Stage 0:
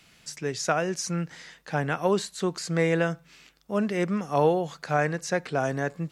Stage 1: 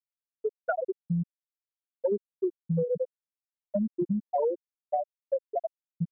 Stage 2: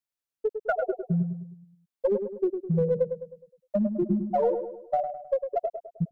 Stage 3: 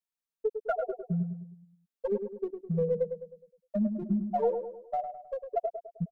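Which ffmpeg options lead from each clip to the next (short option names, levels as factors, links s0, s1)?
-af "afftfilt=real='re*gte(hypot(re,im),0.501)':imag='im*gte(hypot(re,im),0.501)':win_size=1024:overlap=0.75,acompressor=threshold=0.02:ratio=6,volume=2.66"
-filter_complex "[0:a]asplit=2[s0][s1];[s1]aeval=exprs='clip(val(0),-1,0.0531)':c=same,volume=0.398[s2];[s0][s2]amix=inputs=2:normalize=0,asplit=2[s3][s4];[s4]adelay=104,lowpass=f=1400:p=1,volume=0.447,asplit=2[s5][s6];[s6]adelay=104,lowpass=f=1400:p=1,volume=0.48,asplit=2[s7][s8];[s8]adelay=104,lowpass=f=1400:p=1,volume=0.48,asplit=2[s9][s10];[s10]adelay=104,lowpass=f=1400:p=1,volume=0.48,asplit=2[s11][s12];[s12]adelay=104,lowpass=f=1400:p=1,volume=0.48,asplit=2[s13][s14];[s14]adelay=104,lowpass=f=1400:p=1,volume=0.48[s15];[s3][s5][s7][s9][s11][s13][s15]amix=inputs=7:normalize=0"
-af "aecho=1:1:4.4:0.74,volume=0.473"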